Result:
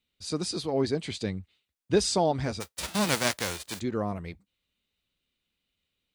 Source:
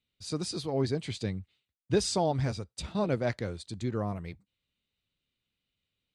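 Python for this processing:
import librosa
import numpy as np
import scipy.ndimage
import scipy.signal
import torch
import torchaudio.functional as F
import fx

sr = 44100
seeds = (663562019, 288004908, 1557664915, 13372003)

y = fx.envelope_flatten(x, sr, power=0.3, at=(2.6, 3.79), fade=0.02)
y = fx.peak_eq(y, sr, hz=120.0, db=-9.0, octaves=0.58)
y = y * librosa.db_to_amplitude(3.5)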